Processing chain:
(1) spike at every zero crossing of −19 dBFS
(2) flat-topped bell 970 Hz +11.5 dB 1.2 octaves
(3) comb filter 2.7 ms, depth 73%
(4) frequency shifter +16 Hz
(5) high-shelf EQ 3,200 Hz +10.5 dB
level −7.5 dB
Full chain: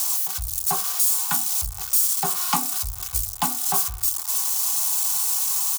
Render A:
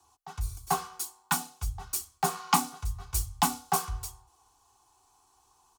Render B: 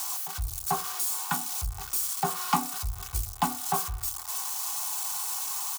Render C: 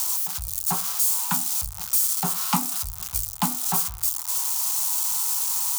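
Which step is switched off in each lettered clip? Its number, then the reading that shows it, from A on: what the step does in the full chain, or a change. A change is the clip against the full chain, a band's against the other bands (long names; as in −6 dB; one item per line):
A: 1, change in crest factor +7.0 dB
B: 5, 8 kHz band −8.5 dB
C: 3, 250 Hz band +7.0 dB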